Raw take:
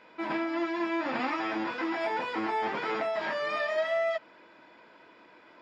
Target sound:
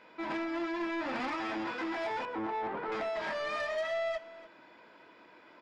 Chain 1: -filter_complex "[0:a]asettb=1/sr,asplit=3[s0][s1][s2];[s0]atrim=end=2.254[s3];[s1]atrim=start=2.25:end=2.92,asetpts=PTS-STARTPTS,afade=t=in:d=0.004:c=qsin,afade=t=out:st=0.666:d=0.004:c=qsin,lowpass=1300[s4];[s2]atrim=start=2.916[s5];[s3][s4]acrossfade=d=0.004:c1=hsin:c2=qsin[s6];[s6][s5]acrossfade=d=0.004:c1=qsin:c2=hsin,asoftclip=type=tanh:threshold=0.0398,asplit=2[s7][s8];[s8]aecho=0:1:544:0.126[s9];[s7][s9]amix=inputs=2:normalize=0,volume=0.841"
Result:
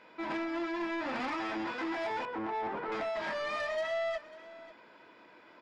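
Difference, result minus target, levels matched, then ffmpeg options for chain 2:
echo 252 ms late
-filter_complex "[0:a]asettb=1/sr,asplit=3[s0][s1][s2];[s0]atrim=end=2.254[s3];[s1]atrim=start=2.25:end=2.92,asetpts=PTS-STARTPTS,afade=t=in:d=0.004:c=qsin,afade=t=out:st=0.666:d=0.004:c=qsin,lowpass=1300[s4];[s2]atrim=start=2.916[s5];[s3][s4]acrossfade=d=0.004:c1=hsin:c2=qsin[s6];[s6][s5]acrossfade=d=0.004:c1=qsin:c2=hsin,asoftclip=type=tanh:threshold=0.0398,asplit=2[s7][s8];[s8]aecho=0:1:292:0.126[s9];[s7][s9]amix=inputs=2:normalize=0,volume=0.841"

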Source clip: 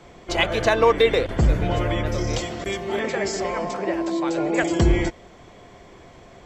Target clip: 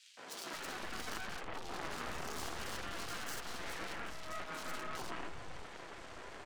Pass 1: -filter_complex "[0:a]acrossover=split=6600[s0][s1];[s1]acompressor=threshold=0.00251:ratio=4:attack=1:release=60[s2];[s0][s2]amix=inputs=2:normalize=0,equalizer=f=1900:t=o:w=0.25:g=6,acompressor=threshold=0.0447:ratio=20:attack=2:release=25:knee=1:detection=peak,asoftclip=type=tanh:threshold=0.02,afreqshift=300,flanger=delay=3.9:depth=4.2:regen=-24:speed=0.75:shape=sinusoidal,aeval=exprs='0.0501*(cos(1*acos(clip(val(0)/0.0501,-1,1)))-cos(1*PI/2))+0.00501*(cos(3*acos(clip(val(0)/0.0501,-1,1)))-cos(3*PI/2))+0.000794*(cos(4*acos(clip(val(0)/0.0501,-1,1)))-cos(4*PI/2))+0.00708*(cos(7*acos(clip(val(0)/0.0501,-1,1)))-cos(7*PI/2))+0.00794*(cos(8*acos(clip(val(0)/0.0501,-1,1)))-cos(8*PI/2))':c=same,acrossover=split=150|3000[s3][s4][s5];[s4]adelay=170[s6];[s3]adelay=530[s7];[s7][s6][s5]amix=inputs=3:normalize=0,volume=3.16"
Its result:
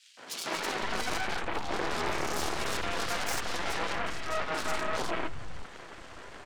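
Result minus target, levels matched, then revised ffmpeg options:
saturation: distortion -5 dB
-filter_complex "[0:a]acrossover=split=6600[s0][s1];[s1]acompressor=threshold=0.00251:ratio=4:attack=1:release=60[s2];[s0][s2]amix=inputs=2:normalize=0,equalizer=f=1900:t=o:w=0.25:g=6,acompressor=threshold=0.0447:ratio=20:attack=2:release=25:knee=1:detection=peak,asoftclip=type=tanh:threshold=0.00708,afreqshift=300,flanger=delay=3.9:depth=4.2:regen=-24:speed=0.75:shape=sinusoidal,aeval=exprs='0.0501*(cos(1*acos(clip(val(0)/0.0501,-1,1)))-cos(1*PI/2))+0.00501*(cos(3*acos(clip(val(0)/0.0501,-1,1)))-cos(3*PI/2))+0.000794*(cos(4*acos(clip(val(0)/0.0501,-1,1)))-cos(4*PI/2))+0.00708*(cos(7*acos(clip(val(0)/0.0501,-1,1)))-cos(7*PI/2))+0.00794*(cos(8*acos(clip(val(0)/0.0501,-1,1)))-cos(8*PI/2))':c=same,acrossover=split=150|3000[s3][s4][s5];[s4]adelay=170[s6];[s3]adelay=530[s7];[s7][s6][s5]amix=inputs=3:normalize=0,volume=3.16"

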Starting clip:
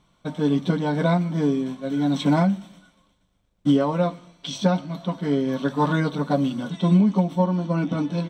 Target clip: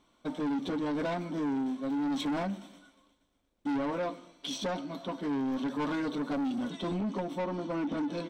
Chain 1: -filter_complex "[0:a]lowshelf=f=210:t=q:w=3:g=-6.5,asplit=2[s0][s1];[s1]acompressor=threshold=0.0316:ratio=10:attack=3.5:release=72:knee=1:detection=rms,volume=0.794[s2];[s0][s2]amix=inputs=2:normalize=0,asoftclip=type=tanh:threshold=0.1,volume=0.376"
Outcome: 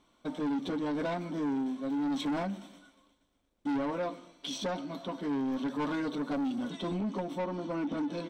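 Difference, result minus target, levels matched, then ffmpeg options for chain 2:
compression: peak gain reduction +7 dB
-filter_complex "[0:a]lowshelf=f=210:t=q:w=3:g=-6.5,asplit=2[s0][s1];[s1]acompressor=threshold=0.075:ratio=10:attack=3.5:release=72:knee=1:detection=rms,volume=0.794[s2];[s0][s2]amix=inputs=2:normalize=0,asoftclip=type=tanh:threshold=0.1,volume=0.376"

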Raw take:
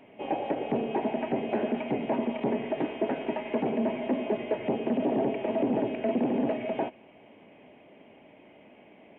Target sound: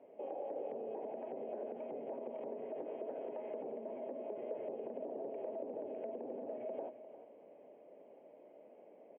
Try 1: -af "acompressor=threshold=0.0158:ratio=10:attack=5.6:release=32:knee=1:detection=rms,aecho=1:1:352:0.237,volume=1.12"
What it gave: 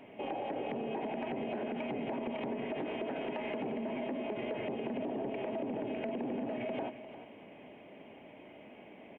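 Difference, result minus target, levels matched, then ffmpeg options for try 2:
500 Hz band -3.0 dB
-af "acompressor=threshold=0.0158:ratio=10:attack=5.6:release=32:knee=1:detection=rms,bandpass=f=520:t=q:w=3.1:csg=0,aecho=1:1:352:0.237,volume=1.12"

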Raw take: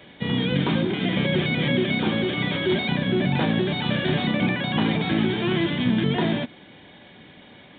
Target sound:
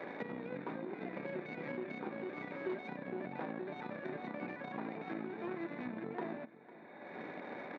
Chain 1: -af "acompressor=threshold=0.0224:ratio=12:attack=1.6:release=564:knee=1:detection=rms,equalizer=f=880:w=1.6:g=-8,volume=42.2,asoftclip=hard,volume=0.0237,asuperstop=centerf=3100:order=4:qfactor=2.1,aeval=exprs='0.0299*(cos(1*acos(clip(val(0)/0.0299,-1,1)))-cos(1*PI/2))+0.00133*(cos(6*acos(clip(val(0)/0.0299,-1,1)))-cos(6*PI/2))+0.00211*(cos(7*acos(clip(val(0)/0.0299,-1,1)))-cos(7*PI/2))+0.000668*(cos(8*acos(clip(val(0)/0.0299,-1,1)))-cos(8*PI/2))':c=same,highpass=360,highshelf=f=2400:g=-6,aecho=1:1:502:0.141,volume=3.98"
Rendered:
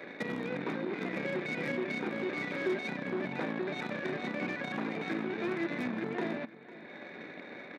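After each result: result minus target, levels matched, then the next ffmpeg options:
4 kHz band +6.5 dB; compression: peak gain reduction -6 dB; 1 kHz band -3.5 dB
-af "acompressor=threshold=0.0224:ratio=12:attack=1.6:release=564:knee=1:detection=rms,equalizer=f=880:w=1.6:g=-8,volume=42.2,asoftclip=hard,volume=0.0237,asuperstop=centerf=3100:order=4:qfactor=2.1,aeval=exprs='0.0299*(cos(1*acos(clip(val(0)/0.0299,-1,1)))-cos(1*PI/2))+0.00133*(cos(6*acos(clip(val(0)/0.0299,-1,1)))-cos(6*PI/2))+0.00211*(cos(7*acos(clip(val(0)/0.0299,-1,1)))-cos(7*PI/2))+0.000668*(cos(8*acos(clip(val(0)/0.0299,-1,1)))-cos(8*PI/2))':c=same,highpass=360,highshelf=f=2400:g=-16,aecho=1:1:502:0.141,volume=3.98"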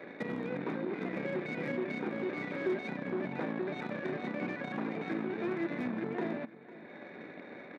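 compression: peak gain reduction -6 dB; 1 kHz band -4.0 dB
-af "acompressor=threshold=0.0106:ratio=12:attack=1.6:release=564:knee=1:detection=rms,equalizer=f=880:w=1.6:g=-8,volume=42.2,asoftclip=hard,volume=0.0237,asuperstop=centerf=3100:order=4:qfactor=2.1,aeval=exprs='0.0299*(cos(1*acos(clip(val(0)/0.0299,-1,1)))-cos(1*PI/2))+0.00133*(cos(6*acos(clip(val(0)/0.0299,-1,1)))-cos(6*PI/2))+0.00211*(cos(7*acos(clip(val(0)/0.0299,-1,1)))-cos(7*PI/2))+0.000668*(cos(8*acos(clip(val(0)/0.0299,-1,1)))-cos(8*PI/2))':c=same,highpass=360,highshelf=f=2400:g=-16,aecho=1:1:502:0.141,volume=3.98"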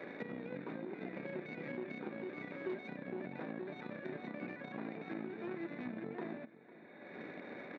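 1 kHz band -4.0 dB
-af "acompressor=threshold=0.0106:ratio=12:attack=1.6:release=564:knee=1:detection=rms,volume=42.2,asoftclip=hard,volume=0.0237,asuperstop=centerf=3100:order=4:qfactor=2.1,aeval=exprs='0.0299*(cos(1*acos(clip(val(0)/0.0299,-1,1)))-cos(1*PI/2))+0.00133*(cos(6*acos(clip(val(0)/0.0299,-1,1)))-cos(6*PI/2))+0.00211*(cos(7*acos(clip(val(0)/0.0299,-1,1)))-cos(7*PI/2))+0.000668*(cos(8*acos(clip(val(0)/0.0299,-1,1)))-cos(8*PI/2))':c=same,highpass=360,highshelf=f=2400:g=-16,aecho=1:1:502:0.141,volume=3.98"

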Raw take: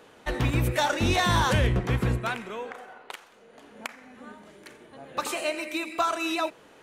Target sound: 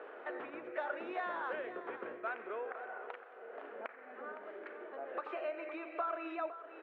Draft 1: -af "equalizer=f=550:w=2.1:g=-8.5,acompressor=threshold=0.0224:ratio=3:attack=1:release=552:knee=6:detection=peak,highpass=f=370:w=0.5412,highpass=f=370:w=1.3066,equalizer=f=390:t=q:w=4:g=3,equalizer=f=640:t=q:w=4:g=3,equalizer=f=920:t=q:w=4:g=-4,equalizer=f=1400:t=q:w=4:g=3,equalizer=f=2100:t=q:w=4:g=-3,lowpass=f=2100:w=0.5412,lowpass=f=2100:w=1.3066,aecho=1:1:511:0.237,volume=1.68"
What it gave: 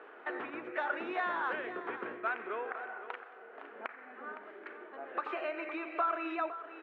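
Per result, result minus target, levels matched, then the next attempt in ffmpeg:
compression: peak gain reduction -6 dB; 500 Hz band -3.5 dB
-af "equalizer=f=550:w=2.1:g=-8.5,acompressor=threshold=0.00794:ratio=3:attack=1:release=552:knee=6:detection=peak,highpass=f=370:w=0.5412,highpass=f=370:w=1.3066,equalizer=f=390:t=q:w=4:g=3,equalizer=f=640:t=q:w=4:g=3,equalizer=f=920:t=q:w=4:g=-4,equalizer=f=1400:t=q:w=4:g=3,equalizer=f=2100:t=q:w=4:g=-3,lowpass=f=2100:w=0.5412,lowpass=f=2100:w=1.3066,aecho=1:1:511:0.237,volume=1.68"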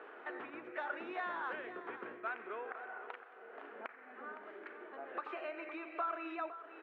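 500 Hz band -3.0 dB
-af "acompressor=threshold=0.00794:ratio=3:attack=1:release=552:knee=6:detection=peak,highpass=f=370:w=0.5412,highpass=f=370:w=1.3066,equalizer=f=390:t=q:w=4:g=3,equalizer=f=640:t=q:w=4:g=3,equalizer=f=920:t=q:w=4:g=-4,equalizer=f=1400:t=q:w=4:g=3,equalizer=f=2100:t=q:w=4:g=-3,lowpass=f=2100:w=0.5412,lowpass=f=2100:w=1.3066,aecho=1:1:511:0.237,volume=1.68"

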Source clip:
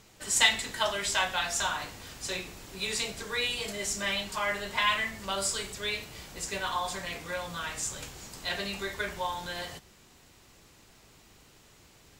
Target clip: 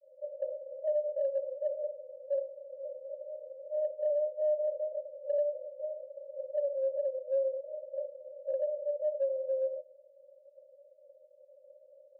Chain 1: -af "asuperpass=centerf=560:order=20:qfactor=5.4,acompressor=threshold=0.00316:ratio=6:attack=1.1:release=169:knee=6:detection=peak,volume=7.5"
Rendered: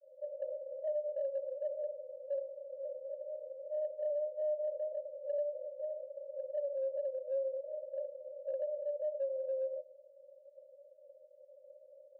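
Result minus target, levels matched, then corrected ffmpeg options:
compression: peak gain reduction +5.5 dB
-af "asuperpass=centerf=560:order=20:qfactor=5.4,acompressor=threshold=0.00668:ratio=6:attack=1.1:release=169:knee=6:detection=peak,volume=7.5"

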